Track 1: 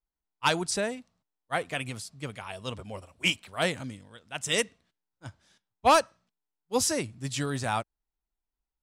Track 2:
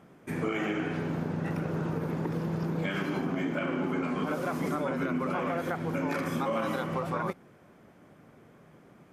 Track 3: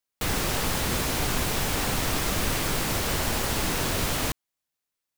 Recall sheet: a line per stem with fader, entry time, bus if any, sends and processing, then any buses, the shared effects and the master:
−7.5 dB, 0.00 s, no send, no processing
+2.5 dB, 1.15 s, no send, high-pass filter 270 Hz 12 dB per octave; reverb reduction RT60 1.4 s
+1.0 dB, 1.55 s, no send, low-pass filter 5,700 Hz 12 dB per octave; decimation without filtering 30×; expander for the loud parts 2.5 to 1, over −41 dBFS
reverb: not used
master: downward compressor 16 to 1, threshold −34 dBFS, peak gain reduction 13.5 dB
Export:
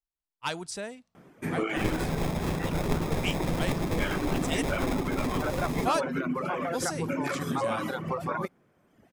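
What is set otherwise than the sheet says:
stem 2: missing high-pass filter 270 Hz 12 dB per octave
master: missing downward compressor 16 to 1, threshold −34 dBFS, peak gain reduction 13.5 dB

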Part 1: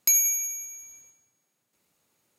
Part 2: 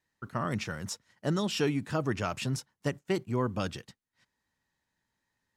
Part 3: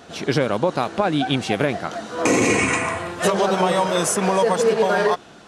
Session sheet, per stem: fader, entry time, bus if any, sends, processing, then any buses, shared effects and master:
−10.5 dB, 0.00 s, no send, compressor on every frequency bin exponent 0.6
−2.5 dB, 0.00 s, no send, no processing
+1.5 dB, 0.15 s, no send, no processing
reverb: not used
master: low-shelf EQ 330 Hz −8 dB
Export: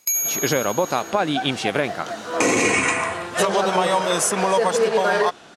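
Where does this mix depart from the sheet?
stem 1 −10.5 dB → −2.0 dB
stem 2 −2.5 dB → −11.5 dB

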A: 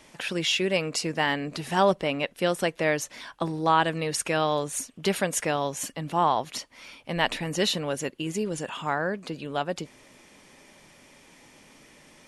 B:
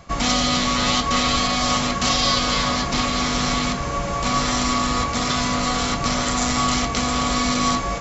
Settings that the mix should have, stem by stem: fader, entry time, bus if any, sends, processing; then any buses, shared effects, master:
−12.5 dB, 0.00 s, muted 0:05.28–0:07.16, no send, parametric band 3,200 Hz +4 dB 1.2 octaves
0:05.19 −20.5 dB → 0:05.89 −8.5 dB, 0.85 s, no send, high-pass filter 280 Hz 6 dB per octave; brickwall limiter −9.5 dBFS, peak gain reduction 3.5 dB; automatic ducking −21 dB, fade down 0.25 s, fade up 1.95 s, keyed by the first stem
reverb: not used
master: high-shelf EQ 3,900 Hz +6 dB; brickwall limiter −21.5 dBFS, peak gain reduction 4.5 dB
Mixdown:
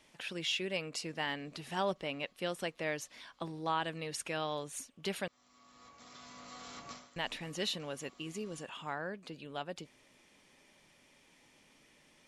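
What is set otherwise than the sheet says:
stem B −20.5 dB → −31.5 dB
master: missing high-shelf EQ 3,900 Hz +6 dB

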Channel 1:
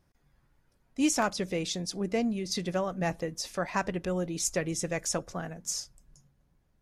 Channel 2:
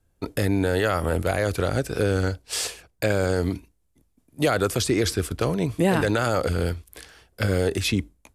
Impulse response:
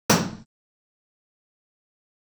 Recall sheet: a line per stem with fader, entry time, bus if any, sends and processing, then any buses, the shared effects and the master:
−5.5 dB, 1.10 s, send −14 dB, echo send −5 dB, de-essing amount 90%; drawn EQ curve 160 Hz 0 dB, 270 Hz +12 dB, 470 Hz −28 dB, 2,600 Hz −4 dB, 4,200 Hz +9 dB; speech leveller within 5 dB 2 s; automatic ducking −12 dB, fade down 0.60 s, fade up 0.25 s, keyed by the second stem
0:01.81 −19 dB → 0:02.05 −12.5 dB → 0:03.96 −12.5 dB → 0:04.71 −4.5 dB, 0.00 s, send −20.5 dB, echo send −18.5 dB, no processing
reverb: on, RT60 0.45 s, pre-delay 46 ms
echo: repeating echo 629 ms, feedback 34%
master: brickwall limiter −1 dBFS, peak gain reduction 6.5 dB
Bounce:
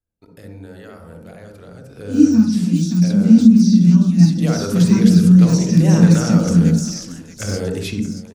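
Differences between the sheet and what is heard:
stem 1 −5.5 dB → +3.0 dB
reverb return −7.5 dB

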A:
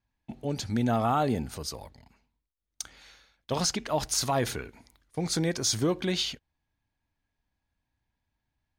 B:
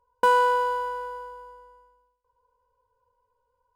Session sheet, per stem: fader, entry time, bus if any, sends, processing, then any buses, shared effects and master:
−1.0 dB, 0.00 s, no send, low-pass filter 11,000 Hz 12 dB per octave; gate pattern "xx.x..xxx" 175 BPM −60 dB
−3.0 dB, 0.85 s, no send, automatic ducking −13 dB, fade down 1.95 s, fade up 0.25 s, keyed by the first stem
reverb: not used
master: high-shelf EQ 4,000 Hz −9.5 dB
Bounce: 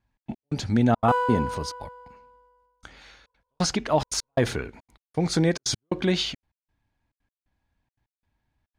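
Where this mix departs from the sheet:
stem A −1.0 dB → +6.5 dB
stem B −3.0 dB → +3.0 dB

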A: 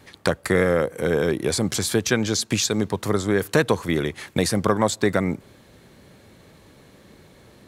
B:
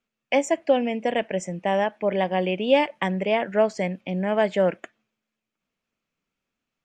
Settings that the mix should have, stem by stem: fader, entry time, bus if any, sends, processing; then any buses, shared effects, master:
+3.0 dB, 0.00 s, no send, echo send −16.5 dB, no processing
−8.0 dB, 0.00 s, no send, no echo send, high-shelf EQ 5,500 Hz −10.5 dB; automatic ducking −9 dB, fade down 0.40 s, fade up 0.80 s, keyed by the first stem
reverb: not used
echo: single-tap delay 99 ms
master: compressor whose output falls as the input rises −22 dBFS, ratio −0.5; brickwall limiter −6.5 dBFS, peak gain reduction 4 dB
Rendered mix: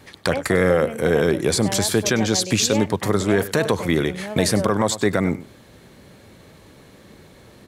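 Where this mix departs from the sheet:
stem B −8.0 dB → +2.0 dB
master: missing compressor whose output falls as the input rises −22 dBFS, ratio −0.5

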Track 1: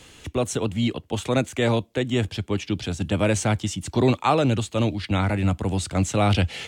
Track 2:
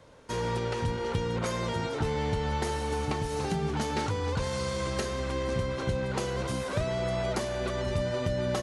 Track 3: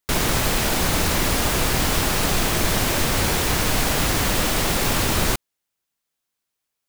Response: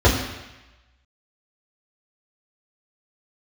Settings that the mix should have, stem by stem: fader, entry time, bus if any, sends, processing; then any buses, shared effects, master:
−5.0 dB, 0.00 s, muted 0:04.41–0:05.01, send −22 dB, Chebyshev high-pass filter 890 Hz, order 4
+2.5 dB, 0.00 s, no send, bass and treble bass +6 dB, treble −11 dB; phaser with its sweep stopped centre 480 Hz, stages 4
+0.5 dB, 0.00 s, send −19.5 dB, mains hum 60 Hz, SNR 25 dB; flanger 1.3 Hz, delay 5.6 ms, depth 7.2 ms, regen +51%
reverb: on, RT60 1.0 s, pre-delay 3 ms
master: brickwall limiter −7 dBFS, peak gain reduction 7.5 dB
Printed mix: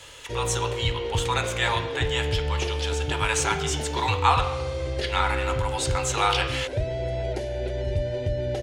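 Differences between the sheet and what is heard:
stem 1 −5.0 dB → +3.0 dB
stem 3: muted

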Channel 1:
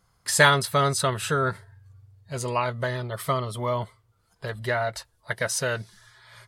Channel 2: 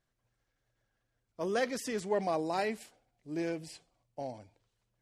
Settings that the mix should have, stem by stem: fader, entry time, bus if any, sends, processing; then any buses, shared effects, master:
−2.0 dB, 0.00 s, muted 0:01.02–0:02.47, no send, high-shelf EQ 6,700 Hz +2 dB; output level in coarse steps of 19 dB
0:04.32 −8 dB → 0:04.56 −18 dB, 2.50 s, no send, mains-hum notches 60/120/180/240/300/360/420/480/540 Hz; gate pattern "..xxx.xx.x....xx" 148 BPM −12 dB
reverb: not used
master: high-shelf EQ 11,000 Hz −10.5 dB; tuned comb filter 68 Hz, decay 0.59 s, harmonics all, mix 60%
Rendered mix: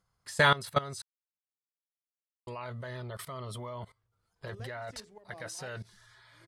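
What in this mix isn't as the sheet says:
stem 2: entry 2.50 s → 3.05 s
master: missing tuned comb filter 68 Hz, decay 0.59 s, harmonics all, mix 60%

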